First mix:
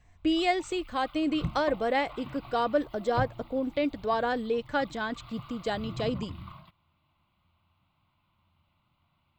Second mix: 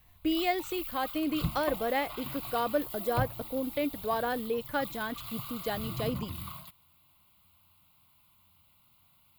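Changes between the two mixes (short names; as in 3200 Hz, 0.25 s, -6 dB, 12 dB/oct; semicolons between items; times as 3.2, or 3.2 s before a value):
speech -3.0 dB; background: remove air absorption 340 m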